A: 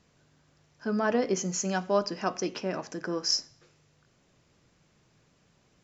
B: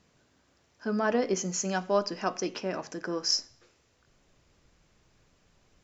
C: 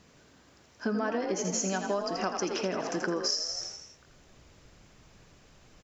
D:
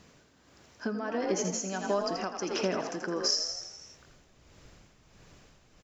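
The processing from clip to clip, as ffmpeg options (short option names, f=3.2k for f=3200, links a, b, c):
-af "bandreject=f=50:t=h:w=6,bandreject=f=100:t=h:w=6,bandreject=f=150:t=h:w=6,asubboost=boost=5:cutoff=62"
-filter_complex "[0:a]asplit=8[a][b][c][d][e][f][g][h];[b]adelay=82,afreqshift=42,volume=-7dB[i];[c]adelay=164,afreqshift=84,volume=-11.9dB[j];[d]adelay=246,afreqshift=126,volume=-16.8dB[k];[e]adelay=328,afreqshift=168,volume=-21.6dB[l];[f]adelay=410,afreqshift=210,volume=-26.5dB[m];[g]adelay=492,afreqshift=252,volume=-31.4dB[n];[h]adelay=574,afreqshift=294,volume=-36.3dB[o];[a][i][j][k][l][m][n][o]amix=inputs=8:normalize=0,acompressor=threshold=-34dB:ratio=8,volume=7dB"
-af "tremolo=f=1.5:d=0.56,volume=2dB"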